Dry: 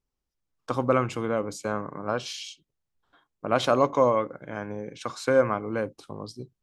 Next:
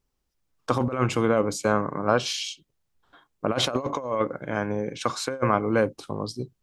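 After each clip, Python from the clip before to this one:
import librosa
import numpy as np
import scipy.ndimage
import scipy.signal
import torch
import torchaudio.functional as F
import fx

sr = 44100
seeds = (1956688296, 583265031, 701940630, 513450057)

y = fx.over_compress(x, sr, threshold_db=-26.0, ratio=-0.5)
y = F.gain(torch.from_numpy(y), 4.0).numpy()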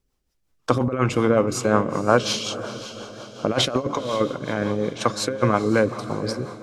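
y = fx.echo_diffused(x, sr, ms=505, feedback_pct=48, wet_db=-12)
y = fx.rotary(y, sr, hz=5.5)
y = F.gain(torch.from_numpy(y), 5.5).numpy()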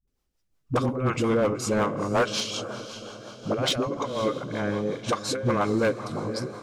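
y = fx.dispersion(x, sr, late='highs', ms=76.0, hz=300.0)
y = np.clip(y, -10.0 ** (-13.5 / 20.0), 10.0 ** (-13.5 / 20.0))
y = F.gain(torch.from_numpy(y), -3.5).numpy()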